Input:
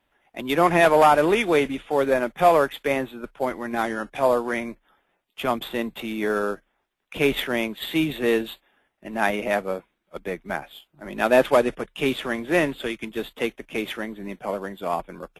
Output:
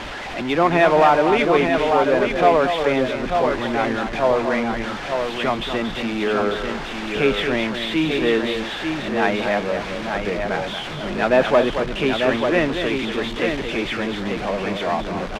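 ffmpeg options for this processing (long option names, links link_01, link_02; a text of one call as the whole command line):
ffmpeg -i in.wav -af "aeval=exprs='val(0)+0.5*0.0596*sgn(val(0))':channel_layout=same,lowpass=4300,aecho=1:1:230|894:0.398|0.531" out.wav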